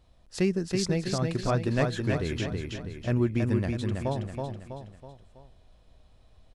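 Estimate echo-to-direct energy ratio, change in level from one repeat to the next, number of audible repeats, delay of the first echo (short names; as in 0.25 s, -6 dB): -3.0 dB, -6.5 dB, 4, 0.325 s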